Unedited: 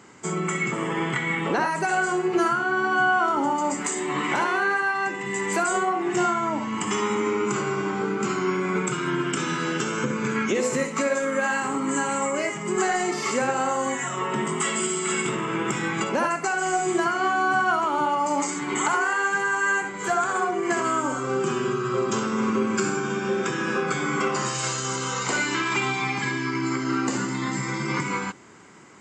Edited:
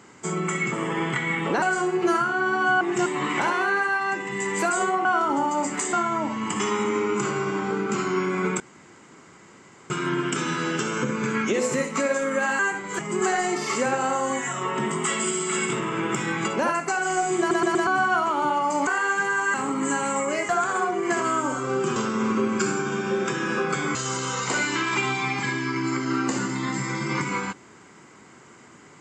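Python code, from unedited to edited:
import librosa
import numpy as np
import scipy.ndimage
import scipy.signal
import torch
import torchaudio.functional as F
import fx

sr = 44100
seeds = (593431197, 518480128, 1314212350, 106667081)

y = fx.edit(x, sr, fx.cut(start_s=1.62, length_s=0.31),
    fx.swap(start_s=3.12, length_s=0.88, other_s=5.99, other_length_s=0.25),
    fx.insert_room_tone(at_s=8.91, length_s=1.3),
    fx.swap(start_s=11.6, length_s=0.95, other_s=19.69, other_length_s=0.4),
    fx.stutter_over(start_s=16.95, slice_s=0.12, count=4),
    fx.cut(start_s=18.43, length_s=0.59),
    fx.cut(start_s=21.56, length_s=0.58),
    fx.cut(start_s=24.13, length_s=0.61), tone=tone)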